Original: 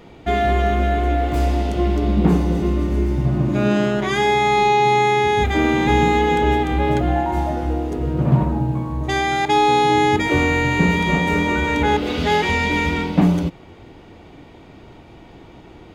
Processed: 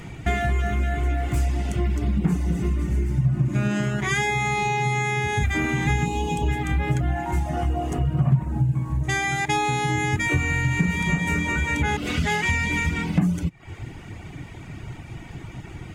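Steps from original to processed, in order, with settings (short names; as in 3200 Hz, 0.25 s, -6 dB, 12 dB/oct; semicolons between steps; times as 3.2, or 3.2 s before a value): ten-band EQ 125 Hz +8 dB, 250 Hz -4 dB, 500 Hz -10 dB, 1000 Hz -4 dB, 2000 Hz +4 dB, 4000 Hz -8 dB, 8000 Hz +9 dB; compressor 2.5:1, threshold -30 dBFS, peak gain reduction 16.5 dB; reverb removal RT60 0.72 s; 6.06–6.48 spectral gain 1200–2400 Hz -21 dB; 7.53–8.3 small resonant body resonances 720/1100/2900 Hz, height 13 dB, ringing for 30 ms; gain +7.5 dB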